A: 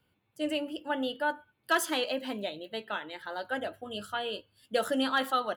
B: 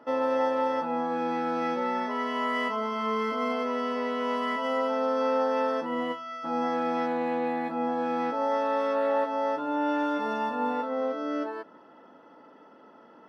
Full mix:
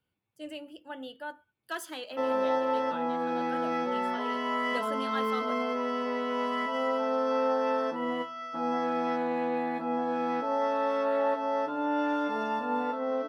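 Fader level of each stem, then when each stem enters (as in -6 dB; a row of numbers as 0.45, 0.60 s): -9.5, -1.5 dB; 0.00, 2.10 s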